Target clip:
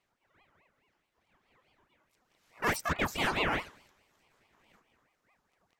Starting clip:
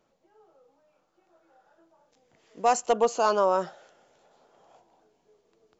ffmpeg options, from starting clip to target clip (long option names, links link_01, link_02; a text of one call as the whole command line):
ffmpeg -i in.wav -filter_complex "[0:a]asplit=2[link_01][link_02];[link_02]asetrate=88200,aresample=44100,atempo=0.5,volume=-3dB[link_03];[link_01][link_03]amix=inputs=2:normalize=0,lowshelf=frequency=340:gain=-12,aeval=exprs='val(0)*sin(2*PI*950*n/s+950*0.75/4.7*sin(2*PI*4.7*n/s))':channel_layout=same,volume=-4.5dB" out.wav